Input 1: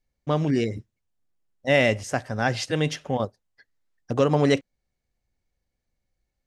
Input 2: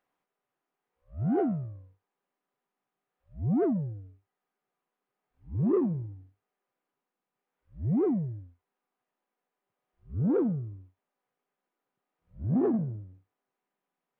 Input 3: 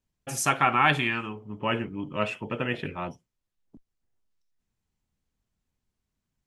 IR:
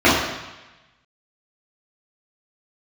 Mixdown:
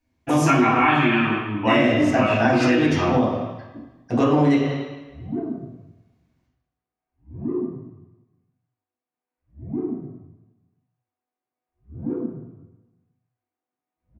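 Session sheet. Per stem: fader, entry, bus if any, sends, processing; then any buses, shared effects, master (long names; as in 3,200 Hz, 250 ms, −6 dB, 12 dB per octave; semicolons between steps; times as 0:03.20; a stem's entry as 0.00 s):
−3.0 dB, 0.00 s, send −18 dB, no processing
−12.5 dB, 1.75 s, send −20.5 dB, no processing
−7.0 dB, 0.00 s, send −9 dB, no processing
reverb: on, RT60 1.1 s, pre-delay 3 ms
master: downward compressor 6 to 1, threshold −14 dBFS, peak gain reduction 9.5 dB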